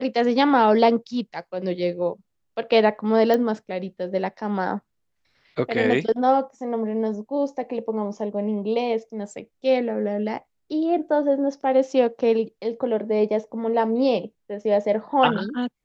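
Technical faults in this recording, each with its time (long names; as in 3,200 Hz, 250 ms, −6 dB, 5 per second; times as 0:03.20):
0:03.34: click −11 dBFS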